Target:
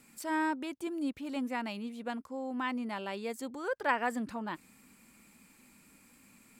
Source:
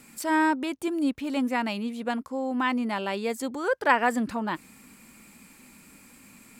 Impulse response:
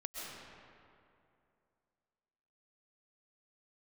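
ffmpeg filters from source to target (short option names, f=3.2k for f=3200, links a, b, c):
-af "atempo=1,volume=-8.5dB"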